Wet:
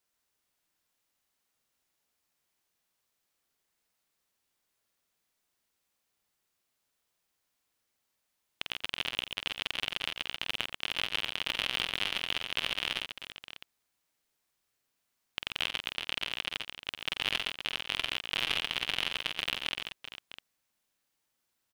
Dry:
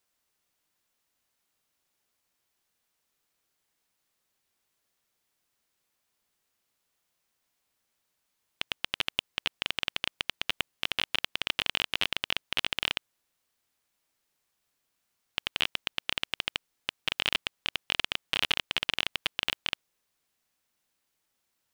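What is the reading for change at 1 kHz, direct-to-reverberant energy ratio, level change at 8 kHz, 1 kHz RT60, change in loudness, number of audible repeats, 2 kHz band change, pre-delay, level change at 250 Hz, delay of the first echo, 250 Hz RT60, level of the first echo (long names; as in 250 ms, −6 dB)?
−2.0 dB, no reverb audible, −2.0 dB, no reverb audible, −2.0 dB, 5, −2.0 dB, no reverb audible, −2.0 dB, 48 ms, no reverb audible, −5.5 dB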